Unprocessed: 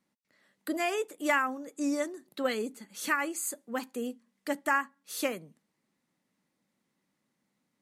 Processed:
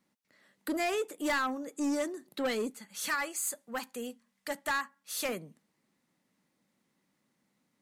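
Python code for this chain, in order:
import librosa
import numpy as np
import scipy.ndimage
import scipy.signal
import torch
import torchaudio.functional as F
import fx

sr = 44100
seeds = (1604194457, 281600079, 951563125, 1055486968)

y = fx.peak_eq(x, sr, hz=320.0, db=-12.0, octaves=1.1, at=(2.7, 5.29))
y = 10.0 ** (-28.5 / 20.0) * np.tanh(y / 10.0 ** (-28.5 / 20.0))
y = y * librosa.db_to_amplitude(2.5)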